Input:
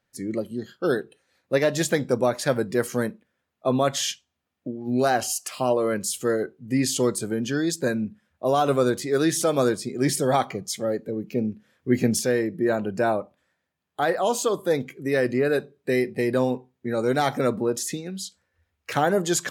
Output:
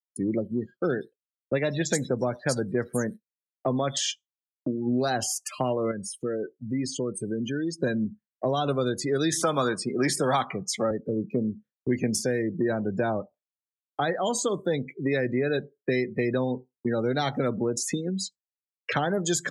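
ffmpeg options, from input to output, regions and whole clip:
ffmpeg -i in.wav -filter_complex "[0:a]asettb=1/sr,asplit=3[link_01][link_02][link_03];[link_01]atrim=end=0.914[link_04];[link_02]atrim=start=0.91:end=3.97,asetpts=PTS-STARTPTS,afade=type=in:duration=0.004:curve=qsin,afade=type=out:start_time=3.056:duration=0.004:curve=qsin,agate=range=-33dB:threshold=-47dB:ratio=3:release=100:detection=peak,acrossover=split=3600[link_05][link_06];[link_06]adelay=100[link_07];[link_05][link_07]amix=inputs=2:normalize=0,atrim=end_sample=134946[link_08];[link_03]atrim=start=3.966[link_09];[link_04][link_08]acrossfade=duration=0.004:curve1=hsin:curve2=qsin[link_10];[link_10][link_09]acrossfade=duration=0.004:curve1=qsin:curve2=hsin,asettb=1/sr,asplit=3[link_11][link_12][link_13];[link_11]atrim=end=5.914[link_14];[link_12]atrim=start=5.91:end=7.8,asetpts=PTS-STARTPTS,afade=type=in:duration=0.004:curve=qsin,afade=type=out:start_time=1.886:duration=0.004:curve=qsin,bandreject=frequency=7400:width=6,acompressor=threshold=-37dB:ratio=2:attack=3.2:release=140:knee=1:detection=peak[link_15];[link_13]atrim=start=7.796[link_16];[link_14][link_15]acrossfade=duration=0.004:curve1=hsin:curve2=qsin[link_17];[link_17][link_16]acrossfade=duration=0.004:curve1=qsin:curve2=hsin,asettb=1/sr,asplit=3[link_18][link_19][link_20];[link_18]atrim=end=9.324[link_21];[link_19]atrim=start=9.32:end=10.91,asetpts=PTS-STARTPTS,afade=type=in:duration=0.004:curve=qsin,afade=type=out:start_time=1.586:duration=0.004:curve=qsin,highpass=140,equalizer=frequency=1100:width=0.97:gain=13.5[link_22];[link_20]atrim=start=10.906[link_23];[link_21][link_22]acrossfade=duration=0.004:curve1=hsin:curve2=qsin[link_24];[link_24][link_23]acrossfade=duration=0.004:curve1=qsin:curve2=hsin,afftdn=noise_reduction=35:noise_floor=-34,agate=range=-33dB:threshold=-46dB:ratio=3:detection=peak,acrossover=split=210|2900|7000[link_25][link_26][link_27][link_28];[link_25]acompressor=threshold=-38dB:ratio=4[link_29];[link_26]acompressor=threshold=-33dB:ratio=4[link_30];[link_27]acompressor=threshold=-39dB:ratio=4[link_31];[link_28]acompressor=threshold=-41dB:ratio=4[link_32];[link_29][link_30][link_31][link_32]amix=inputs=4:normalize=0,volume=6dB" out.wav

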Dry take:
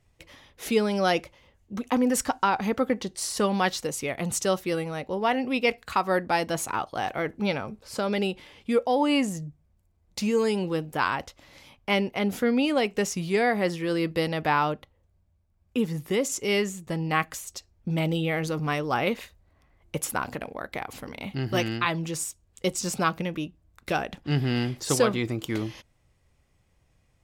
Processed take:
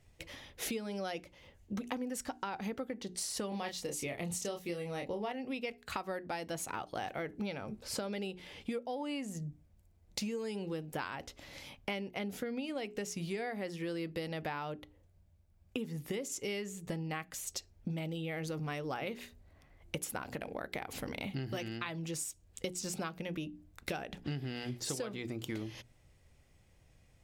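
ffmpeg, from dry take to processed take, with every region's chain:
ffmpeg -i in.wav -filter_complex "[0:a]asettb=1/sr,asplit=3[link_01][link_02][link_03];[link_01]atrim=end=3.494[link_04];[link_02]atrim=start=3.49:end=5.32,asetpts=PTS-STARTPTS,afade=type=in:duration=0.004:curve=qsin,afade=type=out:start_time=1.826:duration=0.004:curve=qsin,equalizer=frequency=1500:width=6.8:gain=-8,asplit=2[link_05][link_06];[link_06]adelay=29,volume=-4.5dB[link_07];[link_05][link_07]amix=inputs=2:normalize=0,atrim=end_sample=80703[link_08];[link_03]atrim=start=5.316[link_09];[link_04][link_08]acrossfade=duration=0.004:curve1=hsin:curve2=qsin[link_10];[link_10][link_09]acrossfade=duration=0.004:curve1=qsin:curve2=hsin,equalizer=frequency=1100:width=2.2:gain=-5,bandreject=frequency=60:width_type=h:width=6,bandreject=frequency=120:width_type=h:width=6,bandreject=frequency=180:width_type=h:width=6,bandreject=frequency=240:width_type=h:width=6,bandreject=frequency=300:width_type=h:width=6,bandreject=frequency=360:width_type=h:width=6,bandreject=frequency=420:width_type=h:width=6,acompressor=threshold=-37dB:ratio=16,volume=2dB" out.wav

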